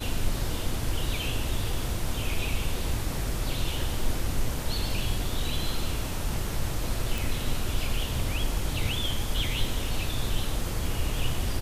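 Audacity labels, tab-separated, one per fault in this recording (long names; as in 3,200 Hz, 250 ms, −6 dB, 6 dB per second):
7.180000	7.180000	click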